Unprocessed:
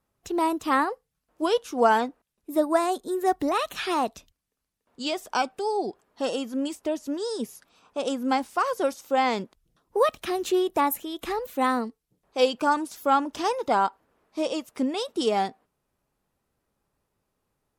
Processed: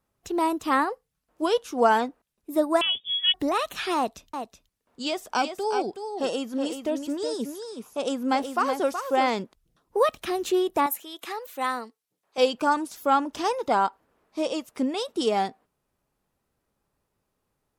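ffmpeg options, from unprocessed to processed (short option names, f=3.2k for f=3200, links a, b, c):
-filter_complex "[0:a]asettb=1/sr,asplit=3[a][b][c];[a]atrim=end=2.814[d];[b]atrim=start=2.81:end=3.34,asetpts=PTS-STARTPTS,afade=t=in:d=0.004:c=qsin,afade=t=out:st=0.526:d=0.004:c=qsin,lowpass=f=3.1k:t=q:w=0.5098,lowpass=f=3.1k:t=q:w=0.6013,lowpass=f=3.1k:t=q:w=0.9,lowpass=f=3.1k:t=q:w=2.563,afreqshift=-3700[e];[c]atrim=start=3.336[f];[d][e]acrossfade=d=0.004:c1=hsin:c2=qsin[g];[g][f]acrossfade=d=0.004:c1=qsin:c2=hsin,asettb=1/sr,asplit=3[h][i][j];[h]atrim=end=3.964[k];[i]atrim=start=3.96:end=9.3,asetpts=PTS-STARTPTS,afade=t=in:d=0.004:c=qsin,afade=t=out:st=5.336:d=0.004:c=qsin,aecho=1:1:373:0.422,atrim=end_sample=235494[l];[j]atrim=start=9.296[m];[k][l]acrossfade=d=0.004:c1=hsin:c2=qsin[n];[n][m]acrossfade=d=0.004:c1=qsin:c2=hsin,asettb=1/sr,asplit=3[o][p][q];[o]atrim=end=10.864[r];[p]atrim=start=10.86:end=12.38,asetpts=PTS-STARTPTS,afade=t=in:d=0.004:c=qsin,afade=t=out:st=1.516:d=0.004:c=qsin,highpass=f=950:p=1[s];[q]atrim=start=12.376[t];[r][s]acrossfade=d=0.004:c1=hsin:c2=qsin[u];[u][t]acrossfade=d=0.004:c1=qsin:c2=hsin"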